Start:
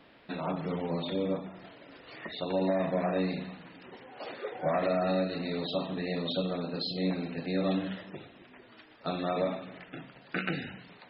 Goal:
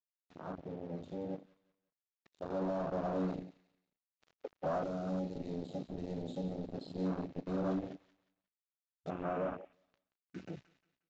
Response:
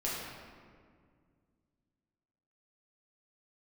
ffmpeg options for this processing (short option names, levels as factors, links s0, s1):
-filter_complex "[0:a]acrusher=bits=4:mix=0:aa=0.5,asoftclip=type=tanh:threshold=0.0335,agate=range=0.126:threshold=0.00126:ratio=16:detection=peak,aecho=1:1:179|358|537:0.224|0.0739|0.0244,dynaudnorm=f=420:g=11:m=1.78,aresample=16000,aresample=44100,asettb=1/sr,asplit=3[s0][s1][s2];[s0]atrim=end=4.834[s3];[s1]atrim=start=4.83:end=6.74,asetpts=PTS-STARTPTS,afade=t=in:d=0.004:c=qsin,afade=t=out:st=1.906:d=0.004:c=qsin,acrossover=split=410|3000[s4][s5][s6];[s5]acompressor=threshold=0.00562:ratio=2[s7];[s4][s7][s6]amix=inputs=3:normalize=0[s8];[s2]atrim=start=6.736[s9];[s3][s8]acrossfade=d=0.004:c1=hsin:c2=qsin[s10];[s10][s9]acrossfade=d=0.004:c1=qsin:c2=hsin,afwtdn=0.0224,asettb=1/sr,asplit=3[s11][s12][s13];[s11]atrim=end=9.104[s14];[s12]atrim=start=9.1:end=9.73,asetpts=PTS-STARTPTS,afade=t=in:d=0.004:c=qsin,afade=t=out:st=0.626:d=0.004:c=qsin,highshelf=f=3300:t=q:w=3:g=-7.5[s15];[s13]atrim=start=9.726[s16];[s14][s15]acrossfade=d=0.004:c1=hsin:c2=qsin[s17];[s17][s16]acrossfade=d=0.004:c1=qsin:c2=hsin,volume=0.562"